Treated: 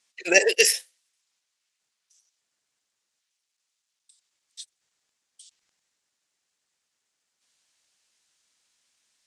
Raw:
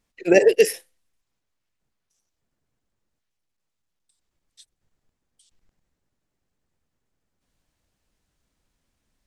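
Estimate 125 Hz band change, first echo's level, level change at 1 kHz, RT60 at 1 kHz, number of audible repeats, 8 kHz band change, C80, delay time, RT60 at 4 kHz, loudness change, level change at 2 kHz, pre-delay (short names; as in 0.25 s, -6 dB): under -15 dB, none, -3.0 dB, none, none, +9.5 dB, none, none, none, -2.0 dB, +5.0 dB, none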